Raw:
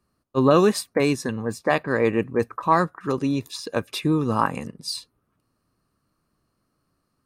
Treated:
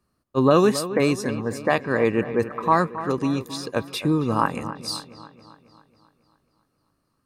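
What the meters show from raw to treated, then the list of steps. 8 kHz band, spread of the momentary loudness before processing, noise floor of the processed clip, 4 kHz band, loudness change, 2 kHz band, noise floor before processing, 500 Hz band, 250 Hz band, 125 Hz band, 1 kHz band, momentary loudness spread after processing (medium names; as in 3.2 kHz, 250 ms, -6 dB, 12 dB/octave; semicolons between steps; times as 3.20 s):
0.0 dB, 11 LU, -73 dBFS, 0.0 dB, 0.0 dB, +0.5 dB, -74 dBFS, +0.5 dB, +0.5 dB, +0.5 dB, +0.5 dB, 11 LU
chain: feedback echo behind a low-pass 272 ms, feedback 54%, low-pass 2.9 kHz, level -13 dB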